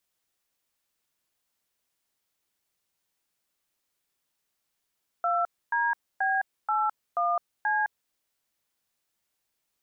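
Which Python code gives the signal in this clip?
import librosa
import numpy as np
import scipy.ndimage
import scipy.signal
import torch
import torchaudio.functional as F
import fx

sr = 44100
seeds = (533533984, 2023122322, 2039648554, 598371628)

y = fx.dtmf(sr, digits='2DB81C', tone_ms=211, gap_ms=271, level_db=-25.5)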